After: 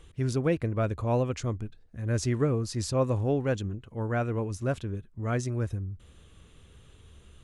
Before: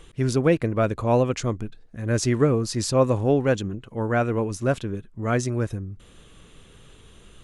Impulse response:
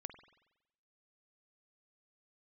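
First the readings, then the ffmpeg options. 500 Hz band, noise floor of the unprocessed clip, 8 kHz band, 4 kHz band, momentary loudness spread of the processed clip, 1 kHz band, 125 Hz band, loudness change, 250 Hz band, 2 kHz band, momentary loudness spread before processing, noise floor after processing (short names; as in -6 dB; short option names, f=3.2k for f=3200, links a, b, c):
-7.5 dB, -51 dBFS, -7.5 dB, -7.5 dB, 10 LU, -7.5 dB, -3.5 dB, -6.0 dB, -6.5 dB, -7.5 dB, 11 LU, -56 dBFS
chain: -af "equalizer=f=76:w=1.5:g=11.5,volume=-7.5dB"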